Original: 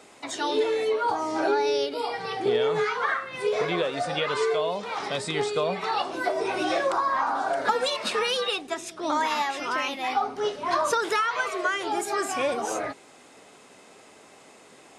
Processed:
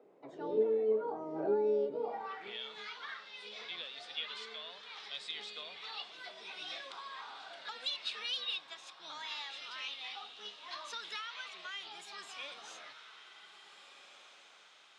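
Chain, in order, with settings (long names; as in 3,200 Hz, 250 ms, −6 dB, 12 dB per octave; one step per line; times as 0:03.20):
sub-octave generator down 1 octave, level +1 dB
high-shelf EQ 7,600 Hz −5.5 dB
mains-hum notches 50/100/150 Hz
on a send: feedback delay with all-pass diffusion 1,699 ms, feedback 41%, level −11 dB
on the sum: band-pass filter sweep 440 Hz → 3,600 Hz, 0:02.01–0:02.61
high-pass filter 110 Hz
level −5 dB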